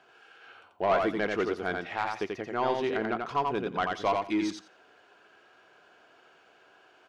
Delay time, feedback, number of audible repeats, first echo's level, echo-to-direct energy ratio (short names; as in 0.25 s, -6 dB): 87 ms, 16%, 2, -3.5 dB, -3.5 dB